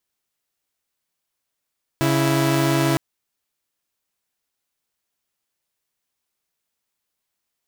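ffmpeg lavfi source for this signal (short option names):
-f lavfi -i "aevalsrc='0.141*((2*mod(138.59*t,1)-1)+(2*mod(329.63*t,1)-1))':d=0.96:s=44100"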